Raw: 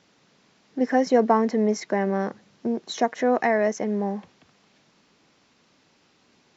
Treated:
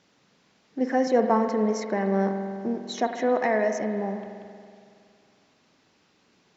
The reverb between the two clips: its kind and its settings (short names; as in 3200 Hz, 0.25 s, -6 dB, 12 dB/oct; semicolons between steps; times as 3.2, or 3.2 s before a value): spring tank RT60 2.3 s, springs 46 ms, chirp 35 ms, DRR 6 dB; gain -3 dB